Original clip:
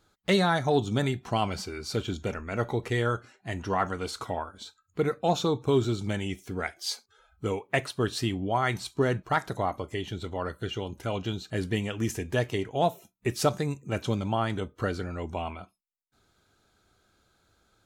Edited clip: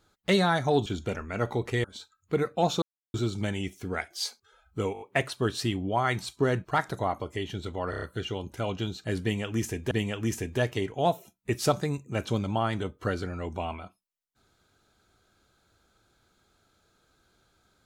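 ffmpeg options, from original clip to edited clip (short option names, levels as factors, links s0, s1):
-filter_complex "[0:a]asplit=14[s0][s1][s2][s3][s4][s5][s6][s7][s8][s9][s10][s11][s12][s13];[s0]atrim=end=0.862[s14];[s1]atrim=start=2.038:end=3.022[s15];[s2]atrim=start=4.498:end=5.48,asetpts=PTS-STARTPTS,afade=t=out:st=0.978:d=0.004:c=hsin[s16];[s3]atrim=start=5.48:end=5.8,asetpts=PTS-STARTPTS,volume=0[s17];[s4]atrim=start=5.8:end=7.612,asetpts=PTS-STARTPTS,afade=t=in:d=0.004:c=hsin[s18];[s5]atrim=start=7.588:end=7.612[s19];[s6]atrim=start=7.588:end=7.612[s20];[s7]atrim=start=7.588:end=7.612[s21];[s8]atrim=start=7.588:end=10.512[s22];[s9]atrim=start=10.478:end=10.512[s23];[s10]atrim=start=10.478:end=10.512[s24];[s11]atrim=start=10.478:end=10.512[s25];[s12]atrim=start=10.478:end=12.372[s26];[s13]atrim=start=11.678[s27];[s14][s15]acrossfade=d=0.004:c1=hsin:c2=hsin[s28];[s16][s17][s18]concat=n=3:v=0:a=1[s29];[s28][s29]acrossfade=d=0.004:c1=hsin:c2=hsin[s30];[s30][s19]acrossfade=d=0.004:c1=hsin:c2=hsin[s31];[s31][s20]acrossfade=d=0.004:c1=hsin:c2=hsin[s32];[s32][s21]acrossfade=d=0.004:c1=hsin:c2=hsin[s33];[s33][s22]acrossfade=d=0.004:c1=hsin:c2=hsin[s34];[s34][s23]acrossfade=d=0.004:c1=hsin:c2=hsin[s35];[s35][s24]acrossfade=d=0.004:c1=hsin:c2=hsin[s36];[s36][s25]acrossfade=d=0.004:c1=hsin:c2=hsin[s37];[s37][s26]acrossfade=d=0.004:c1=hsin:c2=hsin[s38];[s38][s27]acrossfade=d=0.004:c1=hsin:c2=hsin"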